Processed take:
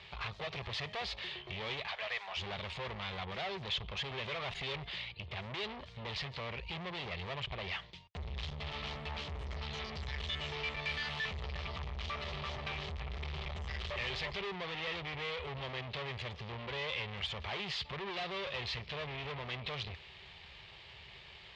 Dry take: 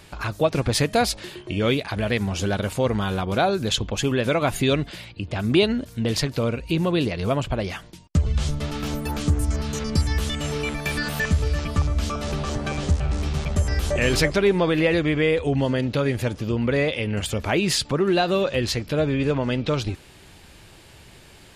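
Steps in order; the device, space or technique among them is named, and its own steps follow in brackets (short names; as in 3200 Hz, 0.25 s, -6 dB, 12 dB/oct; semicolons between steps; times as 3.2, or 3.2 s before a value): 1.87–2.37 inverse Chebyshev high-pass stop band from 300 Hz, stop band 40 dB; scooped metal amplifier (tube stage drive 33 dB, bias 0.55; speaker cabinet 81–3400 Hz, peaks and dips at 100 Hz -6 dB, 390 Hz +8 dB, 1500 Hz -10 dB, 2600 Hz -3 dB; passive tone stack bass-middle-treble 10-0-10); gain +8.5 dB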